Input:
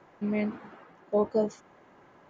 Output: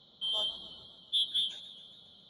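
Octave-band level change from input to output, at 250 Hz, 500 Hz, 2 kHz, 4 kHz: under -30 dB, -24.0 dB, under -15 dB, no reading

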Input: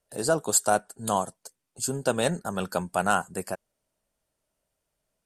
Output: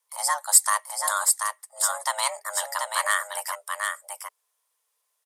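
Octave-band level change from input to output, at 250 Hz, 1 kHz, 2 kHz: under -40 dB, +2.0 dB, +5.0 dB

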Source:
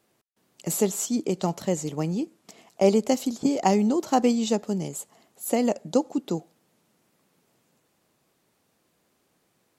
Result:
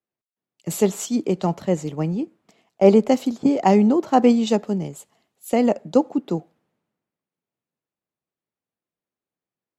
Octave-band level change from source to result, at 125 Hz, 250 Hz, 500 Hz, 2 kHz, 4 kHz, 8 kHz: +5.0 dB, +5.5 dB, +5.5 dB, +4.0 dB, +1.0 dB, -3.0 dB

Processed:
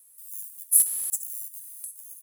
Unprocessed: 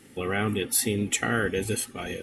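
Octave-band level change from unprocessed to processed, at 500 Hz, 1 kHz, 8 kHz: under -35 dB, under -30 dB, +5.0 dB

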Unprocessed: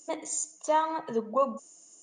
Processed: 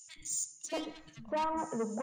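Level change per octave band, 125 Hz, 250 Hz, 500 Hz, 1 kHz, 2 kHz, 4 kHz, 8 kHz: +1.5 dB, -2.0 dB, -8.0 dB, -7.5 dB, -4.5 dB, 0.0 dB, -2.5 dB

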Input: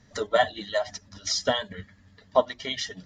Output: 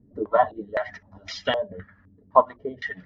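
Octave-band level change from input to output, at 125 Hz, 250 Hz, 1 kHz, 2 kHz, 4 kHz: -1.0 dB, +2.0 dB, +6.0 dB, -0.5 dB, -7.0 dB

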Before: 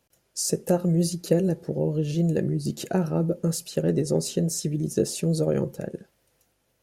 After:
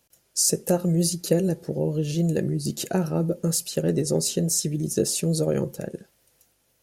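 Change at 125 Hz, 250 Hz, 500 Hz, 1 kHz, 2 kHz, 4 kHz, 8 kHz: 0.0 dB, 0.0 dB, 0.0 dB, +0.5 dB, +1.5 dB, +5.0 dB, +6.5 dB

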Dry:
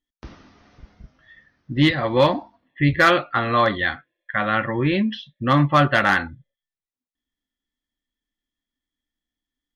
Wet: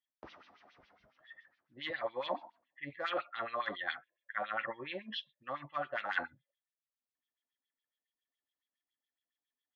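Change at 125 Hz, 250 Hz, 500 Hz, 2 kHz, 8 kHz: -36.0 dB, -29.0 dB, -18.5 dB, -17.0 dB, no reading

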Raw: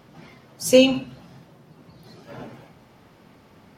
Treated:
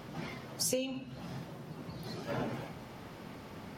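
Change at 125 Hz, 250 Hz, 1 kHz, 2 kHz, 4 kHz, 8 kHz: -0.5 dB, -15.0 dB, -3.5 dB, -13.0 dB, -14.0 dB, -6.0 dB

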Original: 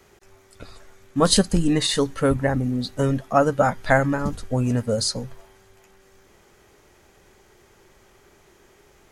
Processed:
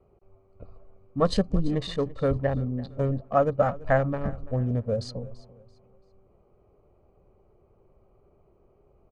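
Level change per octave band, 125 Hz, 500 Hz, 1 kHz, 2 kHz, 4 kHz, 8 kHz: -3.0 dB, -3.0 dB, -5.5 dB, -9.5 dB, -14.0 dB, under -20 dB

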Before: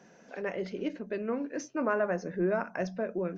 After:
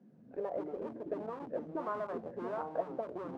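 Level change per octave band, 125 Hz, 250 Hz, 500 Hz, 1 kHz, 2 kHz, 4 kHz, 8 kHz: -11.5 dB, -9.5 dB, -6.0 dB, -3.0 dB, -15.0 dB, under -10 dB, no reading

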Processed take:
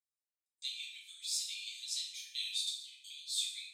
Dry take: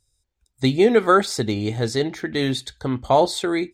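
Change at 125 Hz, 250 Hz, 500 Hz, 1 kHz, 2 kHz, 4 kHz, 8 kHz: under -40 dB, under -40 dB, under -40 dB, under -40 dB, -21.5 dB, -6.5 dB, -4.5 dB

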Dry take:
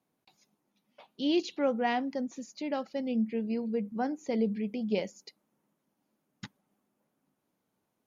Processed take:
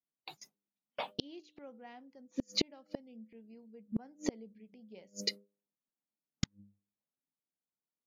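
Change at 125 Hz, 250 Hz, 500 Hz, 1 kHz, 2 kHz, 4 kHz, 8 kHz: -3.0 dB, -11.5 dB, -13.5 dB, -14.0 dB, -9.0 dB, +2.5 dB, no reading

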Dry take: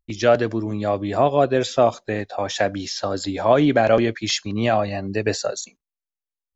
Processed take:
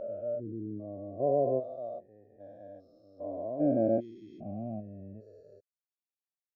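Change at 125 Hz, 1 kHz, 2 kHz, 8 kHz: -15.0 dB, -19.5 dB, under -40 dB, no reading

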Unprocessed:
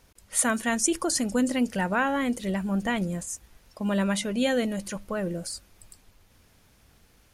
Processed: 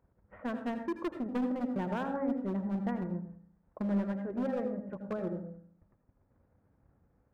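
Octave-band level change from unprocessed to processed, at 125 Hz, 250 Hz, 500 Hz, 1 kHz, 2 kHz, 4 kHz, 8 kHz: -6.0 dB, -6.5 dB, -7.0 dB, -9.5 dB, -16.5 dB, under -20 dB, under -40 dB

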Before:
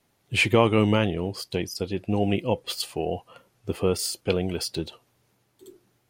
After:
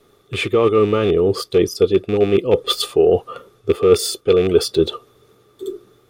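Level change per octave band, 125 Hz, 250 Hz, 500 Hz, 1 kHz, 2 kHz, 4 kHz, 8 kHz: +2.0 dB, +5.5 dB, +12.0 dB, +4.0 dB, -0.5 dB, +6.5 dB, +5.0 dB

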